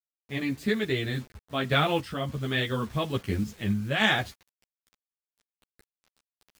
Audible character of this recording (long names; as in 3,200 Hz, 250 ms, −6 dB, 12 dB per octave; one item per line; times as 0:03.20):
a quantiser's noise floor 8 bits, dither none
sample-and-hold tremolo
a shimmering, thickened sound